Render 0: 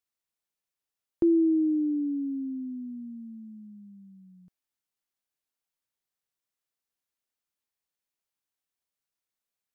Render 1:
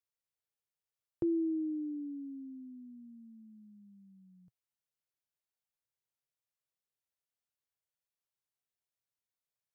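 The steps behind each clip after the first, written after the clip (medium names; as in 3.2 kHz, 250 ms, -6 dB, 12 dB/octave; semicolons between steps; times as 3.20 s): graphic EQ 125/250/500 Hz +10/-8/+4 dB; trim -7.5 dB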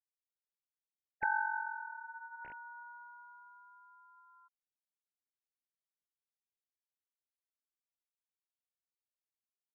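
formants replaced by sine waves; ring modulator 1.2 kHz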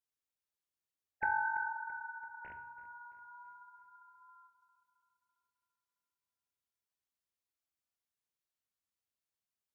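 feedback echo behind a low-pass 335 ms, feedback 49%, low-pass 2 kHz, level -14 dB; on a send at -8 dB: reverberation RT60 0.70 s, pre-delay 3 ms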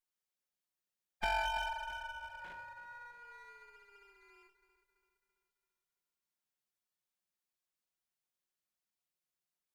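comb filter that takes the minimum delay 5.5 ms; trim +1 dB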